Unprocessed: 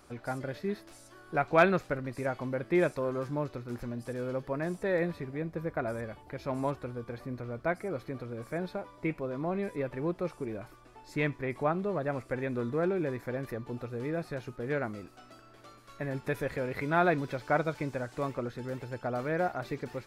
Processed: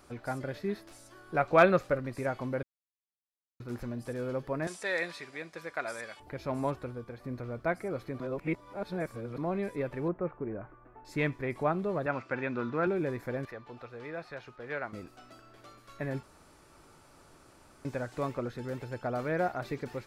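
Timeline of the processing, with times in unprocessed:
1.39–1.99 s: small resonant body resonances 550/1200 Hz, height 8 dB
2.63–3.60 s: mute
4.67–6.20 s: frequency weighting ITU-R 468
6.82–7.24 s: fade out, to -6.5 dB
8.20–9.38 s: reverse
10.08–11.05 s: low-pass 1.8 kHz 24 dB/octave
12.06–12.87 s: cabinet simulation 140–5800 Hz, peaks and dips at 450 Hz -4 dB, 940 Hz +5 dB, 1.4 kHz +8 dB, 2.6 kHz +7 dB
13.45–14.93 s: three-band isolator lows -12 dB, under 580 Hz, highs -16 dB, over 5.5 kHz
16.23–17.85 s: room tone

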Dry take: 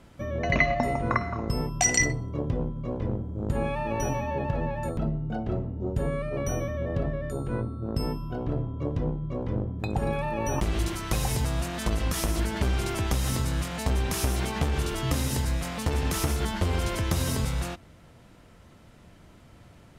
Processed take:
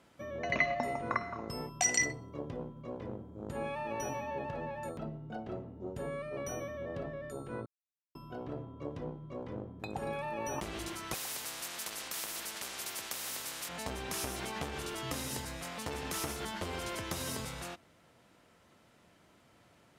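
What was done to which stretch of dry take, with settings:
7.66–8.15 s: mute
11.14–13.69 s: spectrum-flattening compressor 4:1
whole clip: high-pass 360 Hz 6 dB/octave; trim -6 dB

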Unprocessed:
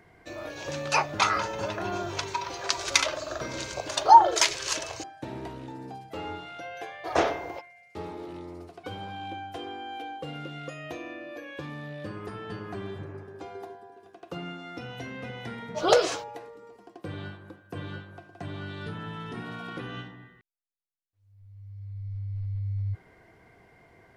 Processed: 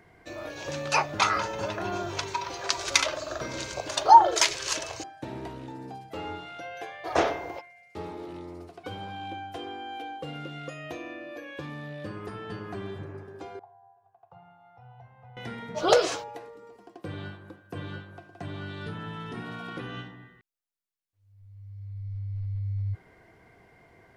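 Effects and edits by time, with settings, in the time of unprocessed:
13.59–15.37 s: two resonant band-passes 300 Hz, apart 2.9 oct

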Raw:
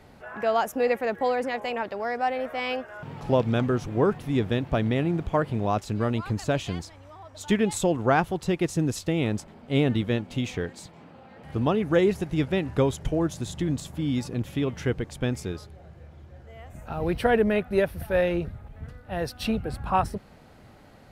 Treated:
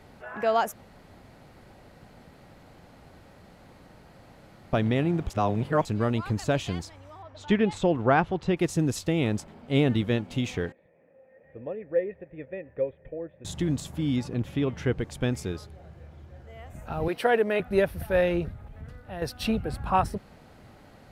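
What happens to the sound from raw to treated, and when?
0.73–4.73 s: room tone
5.30–5.85 s: reverse
7.22–8.57 s: low-pass 3.7 kHz
10.72–13.45 s: cascade formant filter e
14.16–14.99 s: treble shelf 5.6 kHz -9 dB
17.08–17.60 s: high-pass 330 Hz
18.53–19.22 s: compression 2:1, threshold -38 dBFS

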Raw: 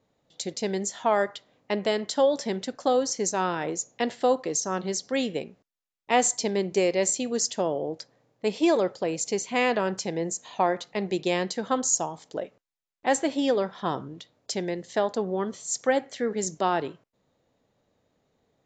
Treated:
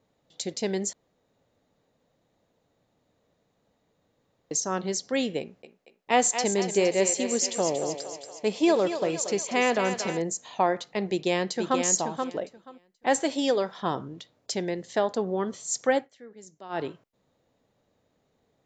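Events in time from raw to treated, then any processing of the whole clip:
0.93–4.51 s: room tone
5.40–10.22 s: thinning echo 232 ms, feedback 61%, high-pass 470 Hz, level -7.5 dB
11.08–11.82 s: echo throw 480 ms, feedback 15%, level -5 dB
13.20–13.78 s: tone controls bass -5 dB, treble +7 dB
15.96–16.82 s: dip -19 dB, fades 0.13 s

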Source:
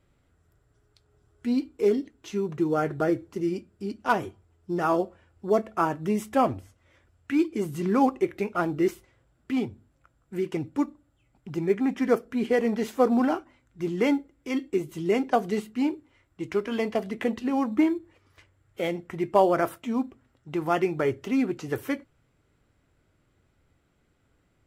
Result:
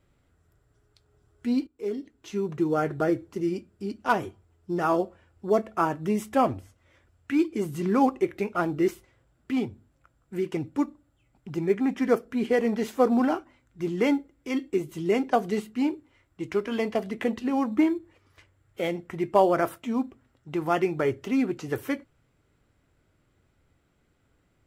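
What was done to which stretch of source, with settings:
1.67–2.45 s: fade in linear, from -17 dB

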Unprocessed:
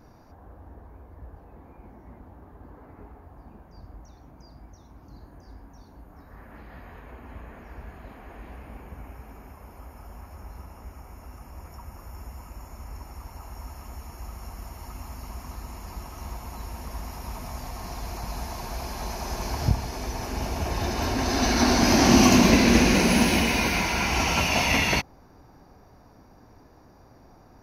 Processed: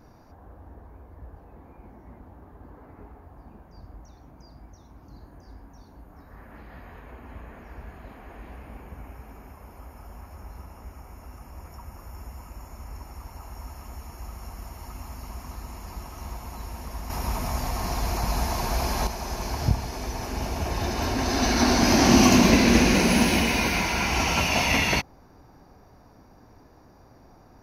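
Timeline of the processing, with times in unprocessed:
17.10–19.07 s: gain +7.5 dB

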